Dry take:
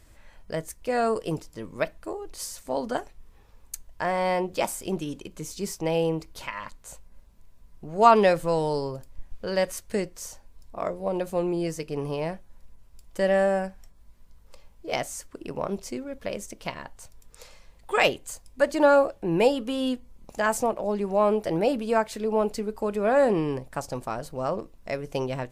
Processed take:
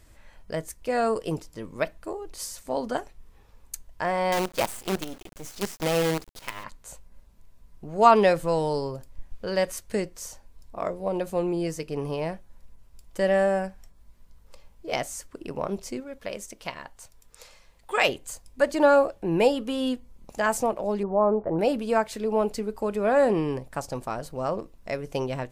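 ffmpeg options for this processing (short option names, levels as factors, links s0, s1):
-filter_complex "[0:a]asettb=1/sr,asplit=3[s0][s1][s2];[s0]atrim=end=4.324[s3];[s1]atrim=start=4.32:end=6.64,asetpts=PTS-STARTPTS,afade=t=in:d=0.004:c=qsin,afade=t=out:st=2.316:d=0.004:c=qsin,acrusher=bits=5:dc=4:mix=0:aa=0.000001[s4];[s2]atrim=start=6.636[s5];[s3][s4]acrossfade=d=0.004:c1=hsin:c2=qsin[s6];[s6][s5]acrossfade=d=0.004:c1=qsin:c2=hsin,asettb=1/sr,asplit=3[s7][s8][s9];[s7]atrim=end=16.004[s10];[s8]atrim=start=16:end=18.09,asetpts=PTS-STARTPTS,afade=t=in:d=0.004:c=qsin,afade=t=out:st=2.086:d=0.004:c=qsin,lowshelf=f=450:g=-6[s11];[s9]atrim=start=18.086[s12];[s10][s11]acrossfade=d=0.004:c1=hsin:c2=qsin[s13];[s13][s12]acrossfade=d=0.004:c1=qsin:c2=hsin,asettb=1/sr,asplit=3[s14][s15][s16];[s14]atrim=end=21.034[s17];[s15]atrim=start=21.03:end=21.59,asetpts=PTS-STARTPTS,afade=t=in:d=0.004:c=qsin,afade=t=out:st=0.556:d=0.004:c=qsin,lowpass=f=1300:w=0.5412,lowpass=f=1300:w=1.3066[s18];[s16]atrim=start=21.586[s19];[s17][s18]acrossfade=d=0.004:c1=hsin:c2=qsin[s20];[s20][s19]acrossfade=d=0.004:c1=qsin:c2=hsin"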